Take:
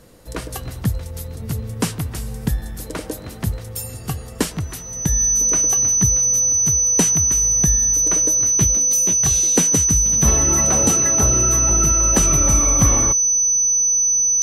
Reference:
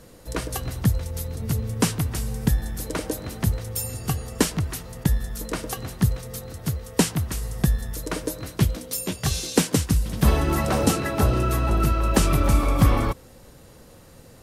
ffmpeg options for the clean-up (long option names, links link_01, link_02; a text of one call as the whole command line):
ffmpeg -i in.wav -af "bandreject=frequency=6000:width=30" out.wav